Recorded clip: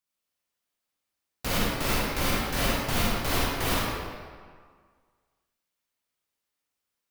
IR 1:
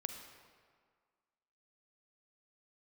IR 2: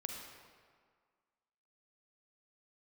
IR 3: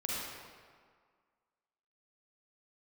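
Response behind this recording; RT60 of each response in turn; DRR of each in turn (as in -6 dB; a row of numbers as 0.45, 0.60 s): 3; 1.8, 1.8, 1.8 s; 5.5, 1.5, -6.0 dB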